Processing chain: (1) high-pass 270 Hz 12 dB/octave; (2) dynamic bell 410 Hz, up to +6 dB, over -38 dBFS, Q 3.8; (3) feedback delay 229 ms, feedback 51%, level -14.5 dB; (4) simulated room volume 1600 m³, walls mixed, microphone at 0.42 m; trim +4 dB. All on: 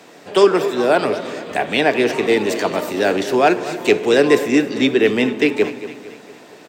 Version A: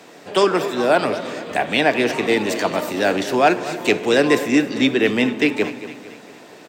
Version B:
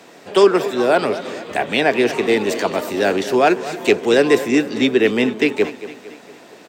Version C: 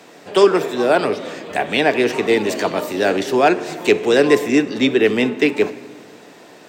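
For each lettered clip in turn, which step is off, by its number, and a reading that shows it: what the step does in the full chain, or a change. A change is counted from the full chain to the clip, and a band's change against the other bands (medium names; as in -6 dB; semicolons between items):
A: 2, loudness change -2.0 LU; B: 4, echo-to-direct -9.5 dB to -13.0 dB; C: 3, echo-to-direct -9.5 dB to -12.5 dB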